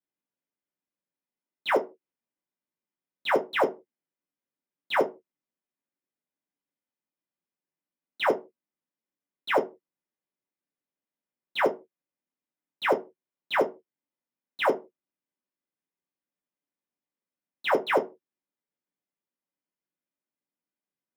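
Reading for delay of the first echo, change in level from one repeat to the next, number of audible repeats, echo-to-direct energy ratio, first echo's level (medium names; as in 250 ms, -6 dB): no echo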